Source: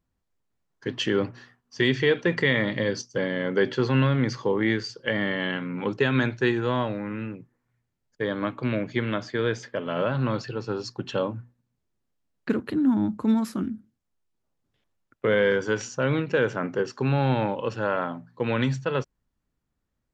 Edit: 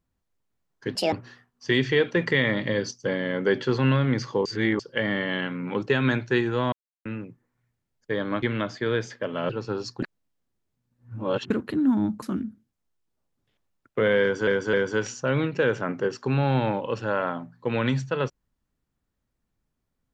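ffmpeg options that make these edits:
-filter_complex "[0:a]asplit=14[a][b][c][d][e][f][g][h][i][j][k][l][m][n];[a]atrim=end=0.954[o];[b]atrim=start=0.95:end=1.23,asetpts=PTS-STARTPTS,asetrate=71001,aresample=44100[p];[c]atrim=start=1.226:end=4.562[q];[d]atrim=start=4.558:end=4.902,asetpts=PTS-STARTPTS,areverse[r];[e]atrim=start=4.898:end=6.83,asetpts=PTS-STARTPTS,afade=t=out:st=1.928:d=0.004:c=hsin[s];[f]atrim=start=6.83:end=7.16,asetpts=PTS-STARTPTS,volume=0[t];[g]atrim=start=7.16:end=8.532,asetpts=PTS-STARTPTS,afade=t=in:d=0.004:c=hsin[u];[h]atrim=start=8.948:end=10.022[v];[i]atrim=start=10.488:end=11.022[w];[j]atrim=start=11.018:end=12.502,asetpts=PTS-STARTPTS,areverse[x];[k]atrim=start=12.498:end=13.222[y];[l]atrim=start=13.488:end=15.742[z];[m]atrim=start=15.478:end=15.742[aa];[n]atrim=start=15.478[ab];[o][p]acrossfade=d=0.004:c1=hsin:c2=hsin[ac];[ac][q]acrossfade=d=0.004:c1=hsin:c2=hsin[ad];[ad][r]acrossfade=d=0.004:c1=hsin:c2=hsin[ae];[s][t][u]concat=n=3:v=0:a=1[af];[ae][af]acrossfade=d=0.004:c1=hsin:c2=hsin[ag];[ag][v]acrossfade=d=0.004:c1=hsin:c2=hsin[ah];[ah][w]acrossfade=d=0.004:c1=hsin:c2=hsin[ai];[ai][x]acrossfade=d=0.004:c1=hsin:c2=hsin[aj];[aj][y]acrossfade=d=0.004:c1=hsin:c2=hsin[ak];[ak][z]acrossfade=d=0.004:c1=hsin:c2=hsin[al];[al][aa]acrossfade=d=0.004:c1=hsin:c2=hsin[am];[am][ab]acrossfade=d=0.004:c1=hsin:c2=hsin"

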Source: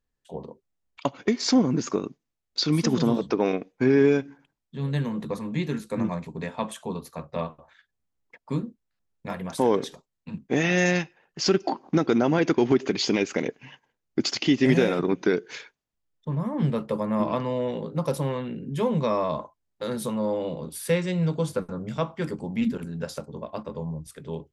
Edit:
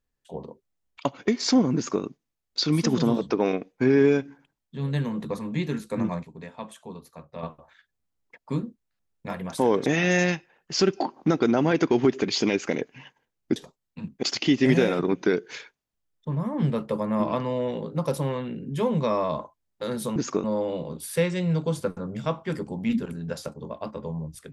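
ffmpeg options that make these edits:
-filter_complex "[0:a]asplit=8[a][b][c][d][e][f][g][h];[a]atrim=end=6.232[i];[b]atrim=start=6.228:end=7.432,asetpts=PTS-STARTPTS,volume=-8dB[j];[c]atrim=start=7.428:end=9.862[k];[d]atrim=start=10.528:end=14.232[l];[e]atrim=start=9.858:end=10.532[m];[f]atrim=start=14.228:end=20.162[n];[g]atrim=start=1.748:end=2.032[o];[h]atrim=start=20.158[p];[i][j]acrossfade=d=0.004:c1=hsin:c2=hsin[q];[q][k]acrossfade=d=0.004:c1=hsin:c2=hsin[r];[r][l]acrossfade=d=0.004:c1=hsin:c2=hsin[s];[s][m]acrossfade=d=0.004:c1=hsin:c2=hsin[t];[t][n]acrossfade=d=0.004:c1=hsin:c2=hsin[u];[u][o]acrossfade=d=0.004:c1=hsin:c2=hsin[v];[v][p]acrossfade=d=0.004:c1=hsin:c2=hsin"

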